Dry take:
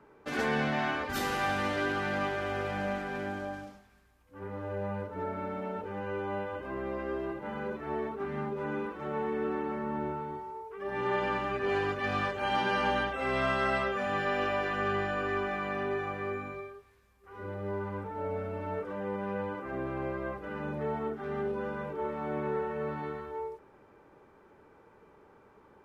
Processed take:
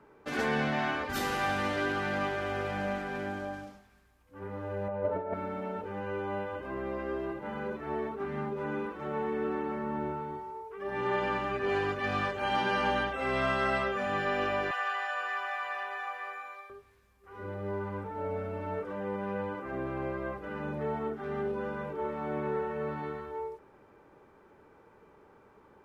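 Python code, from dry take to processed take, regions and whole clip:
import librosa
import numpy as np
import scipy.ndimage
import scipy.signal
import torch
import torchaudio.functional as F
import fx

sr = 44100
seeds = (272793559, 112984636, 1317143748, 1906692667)

y = fx.chain(x, sr, fx.lowpass(hz=3300.0, slope=12),
    fx.over_compress(threshold_db=-38.0, ratio=-0.5),
    fx.peak_eq(hz=610.0, db=12.0, octaves=0.89), at=(4.88, 5.34))
y = fx.chain(y, sr, fx.highpass(hz=680.0, slope=24),
    fx.high_shelf(hz=11000.0, db=4.0),
    fx.comb(ms=4.0, depth=0.32), at=(14.71, 16.7))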